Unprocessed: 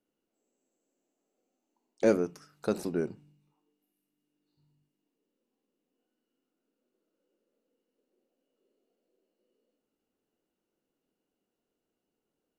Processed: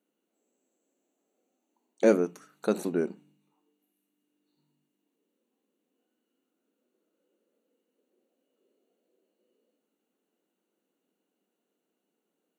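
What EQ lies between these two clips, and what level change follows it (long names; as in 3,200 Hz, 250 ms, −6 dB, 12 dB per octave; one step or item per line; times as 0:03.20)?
linear-phase brick-wall high-pass 160 Hz
Butterworth band-reject 5,100 Hz, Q 4.4
+3.0 dB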